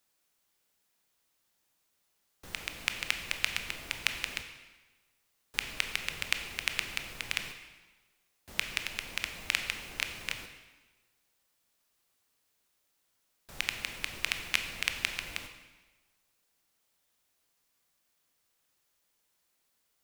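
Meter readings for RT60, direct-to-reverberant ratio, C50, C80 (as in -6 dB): 1.3 s, 6.0 dB, 8.0 dB, 9.5 dB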